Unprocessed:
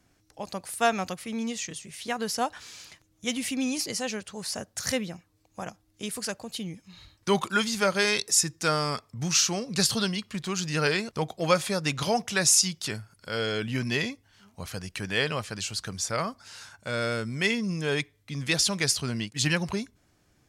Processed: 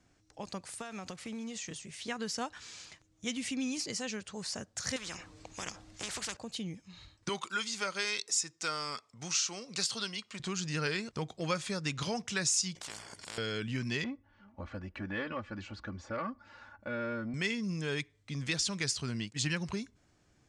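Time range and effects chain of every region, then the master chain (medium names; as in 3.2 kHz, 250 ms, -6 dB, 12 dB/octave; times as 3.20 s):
0.79–1.83 s: block-companded coder 5-bit + compression 12:1, threshold -33 dBFS
4.96–6.37 s: treble shelf 10 kHz -11.5 dB + spectrum-flattening compressor 4:1
7.29–10.40 s: high-pass 670 Hz 6 dB/octave + band-stop 1.7 kHz
12.75–13.38 s: AM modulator 60 Hz, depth 40% + comb of notches 1.3 kHz + spectrum-flattening compressor 10:1
14.04–17.34 s: low-pass 1.5 kHz + comb 3.5 ms, depth 91% + transformer saturation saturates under 630 Hz
whole clip: Chebyshev low-pass 8 kHz, order 3; dynamic bell 680 Hz, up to -7 dB, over -43 dBFS, Q 1.4; compression 1.5:1, threshold -34 dBFS; trim -2.5 dB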